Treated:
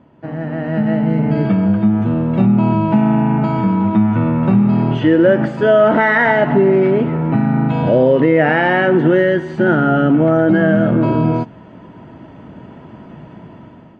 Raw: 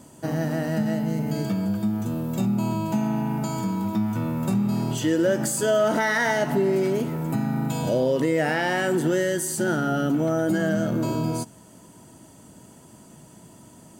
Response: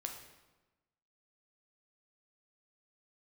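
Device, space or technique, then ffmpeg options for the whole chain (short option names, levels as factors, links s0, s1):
action camera in a waterproof case: -af "lowpass=f=2600:w=0.5412,lowpass=f=2600:w=1.3066,dynaudnorm=f=310:g=5:m=4.47" -ar 44100 -c:a aac -b:a 48k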